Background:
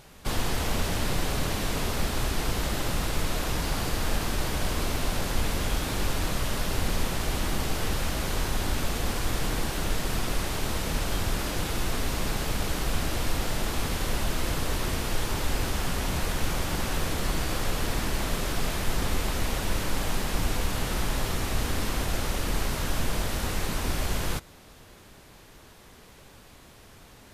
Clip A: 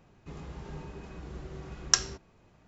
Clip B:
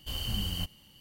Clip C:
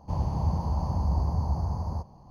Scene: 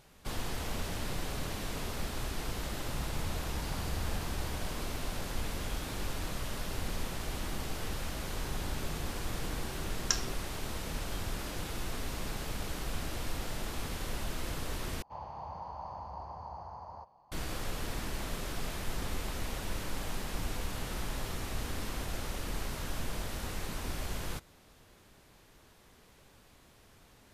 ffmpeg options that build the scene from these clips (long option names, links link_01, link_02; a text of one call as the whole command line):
ffmpeg -i bed.wav -i cue0.wav -i cue1.wav -i cue2.wav -filter_complex "[3:a]asplit=2[link_01][link_02];[0:a]volume=-9dB[link_03];[1:a]alimiter=limit=-7.5dB:level=0:latency=1:release=30[link_04];[link_02]acrossover=split=590 3800:gain=0.0794 1 0.0708[link_05][link_06][link_07];[link_05][link_06][link_07]amix=inputs=3:normalize=0[link_08];[link_03]asplit=2[link_09][link_10];[link_09]atrim=end=15.024[link_11];[link_08]atrim=end=2.3,asetpts=PTS-STARTPTS,volume=-2.5dB[link_12];[link_10]atrim=start=17.316[link_13];[link_01]atrim=end=2.3,asetpts=PTS-STARTPTS,volume=-14.5dB,afade=type=in:duration=0.004:curve=hsin,afade=type=out:start_time=2.296:duration=0.004:curve=hsin,adelay=2800[link_14];[link_04]atrim=end=2.67,asetpts=PTS-STARTPTS,volume=-3dB,afade=type=in:duration=0.004:curve=hsin,afade=type=out:start_time=2.666:duration=0.004:curve=hsin,adelay=8170[link_15];[link_11][link_12]acrossfade=duration=0.004:curve1=hsin:curve2=hsin[link_16];[link_16][link_13]acrossfade=duration=0.004:curve1=hsin:curve2=hsin[link_17];[link_17][link_14][link_15]amix=inputs=3:normalize=0" out.wav